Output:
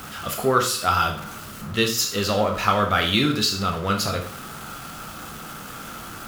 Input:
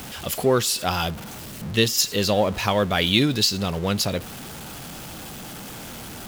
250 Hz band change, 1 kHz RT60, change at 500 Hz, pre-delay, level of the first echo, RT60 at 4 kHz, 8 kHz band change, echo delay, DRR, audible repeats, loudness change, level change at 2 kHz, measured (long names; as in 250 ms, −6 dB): −1.5 dB, 0.50 s, −1.5 dB, 6 ms, no echo audible, 0.45 s, −1.5 dB, no echo audible, 2.5 dB, no echo audible, 0.0 dB, +2.0 dB